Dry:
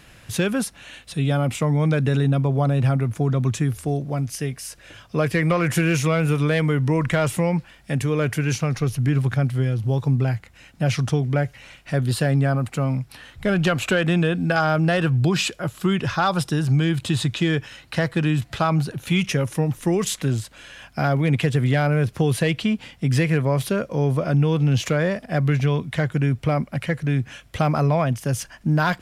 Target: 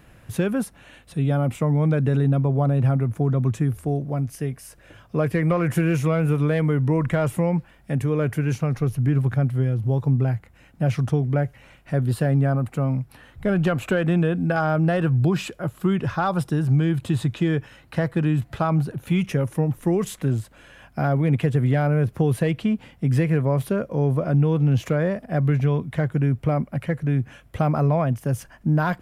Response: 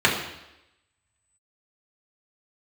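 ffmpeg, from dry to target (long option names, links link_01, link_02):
-af "equalizer=frequency=4900:width_type=o:width=2.6:gain=-12.5"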